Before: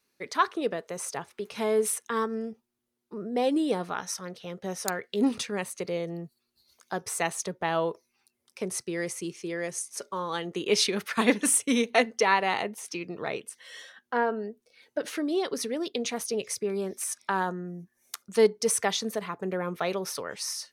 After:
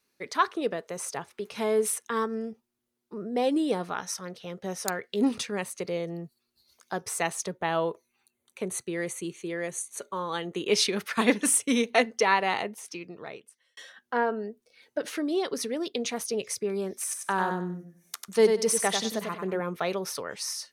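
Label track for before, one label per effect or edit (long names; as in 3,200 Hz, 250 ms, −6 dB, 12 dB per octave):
7.570000	10.680000	Butterworth band-reject 5,200 Hz, Q 3.5
12.510000	13.770000	fade out
17.010000	19.600000	repeating echo 95 ms, feedback 26%, level −5.5 dB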